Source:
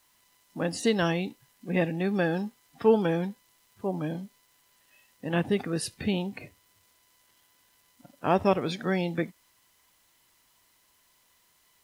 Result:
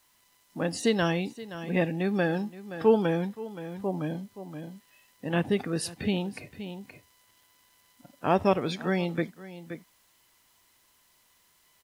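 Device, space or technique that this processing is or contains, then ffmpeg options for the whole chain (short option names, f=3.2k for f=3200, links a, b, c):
ducked delay: -filter_complex "[0:a]asplit=3[a][b][c];[b]adelay=523,volume=-7dB[d];[c]apad=whole_len=544959[e];[d][e]sidechaincompress=threshold=-41dB:ratio=5:attack=16:release=510[f];[a][f]amix=inputs=2:normalize=0"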